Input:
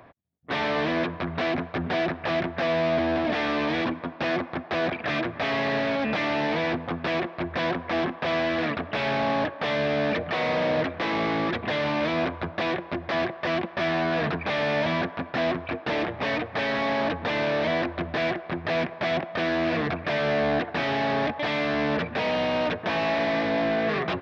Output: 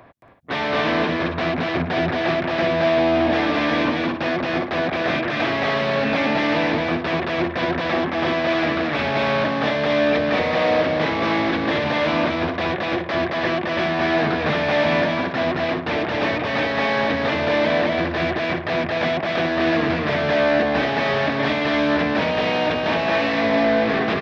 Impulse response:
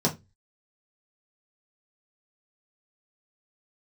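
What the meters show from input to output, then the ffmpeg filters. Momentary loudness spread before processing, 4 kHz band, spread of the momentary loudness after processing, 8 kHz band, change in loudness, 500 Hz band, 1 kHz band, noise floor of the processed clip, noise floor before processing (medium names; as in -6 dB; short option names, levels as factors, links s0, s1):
4 LU, +6.0 dB, 4 LU, no reading, +6.0 dB, +6.0 dB, +5.5 dB, -27 dBFS, -42 dBFS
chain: -af "aecho=1:1:221.6|279.9:0.891|0.398,volume=1.41"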